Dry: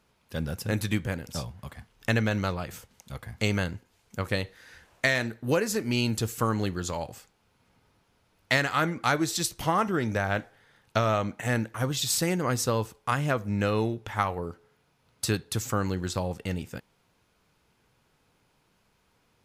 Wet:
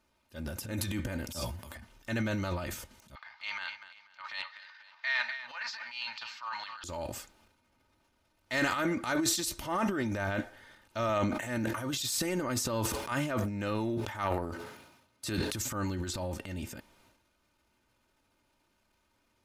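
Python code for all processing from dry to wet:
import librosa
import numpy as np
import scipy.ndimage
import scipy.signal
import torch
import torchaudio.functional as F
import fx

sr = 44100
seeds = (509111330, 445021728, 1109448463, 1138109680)

y = fx.chain(x, sr, fx.highpass(hz=50.0, slope=12),
    fx.high_shelf(hz=6600.0, db=10.5),
    fx.doubler(ms=12.0, db=-6.0), at=(1.32, 1.75))
y = fx.chain(y, sr, fx.ellip_bandpass(low_hz=890.0, high_hz=4700.0, order=3, stop_db=40),
    fx.echo_feedback(ms=245, feedback_pct=51, wet_db=-18), at=(3.15, 6.84))
y = fx.chain(y, sr, fx.highpass(hz=83.0, slope=12),
    fx.sustainer(db_per_s=64.0), at=(11.09, 15.52))
y = y + 0.61 * np.pad(y, (int(3.3 * sr / 1000.0), 0))[:len(y)]
y = fx.transient(y, sr, attack_db=-8, sustain_db=11)
y = y * 10.0 ** (-6.5 / 20.0)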